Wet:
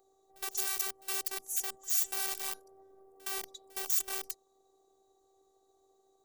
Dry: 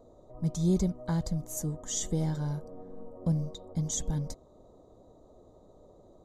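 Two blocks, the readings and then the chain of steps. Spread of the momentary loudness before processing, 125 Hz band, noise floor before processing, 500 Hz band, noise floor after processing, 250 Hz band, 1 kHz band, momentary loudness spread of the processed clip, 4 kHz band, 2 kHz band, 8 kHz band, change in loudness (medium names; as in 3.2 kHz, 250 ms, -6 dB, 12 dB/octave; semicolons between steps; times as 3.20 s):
13 LU, under -40 dB, -58 dBFS, -10.5 dB, -71 dBFS, under -25 dB, +1.5 dB, 13 LU, +3.5 dB, no reading, +1.0 dB, -1.0 dB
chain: integer overflow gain 27.5 dB; RIAA curve recording; robot voice 386 Hz; on a send: reverse echo 65 ms -23 dB; on the sum: trim -7 dB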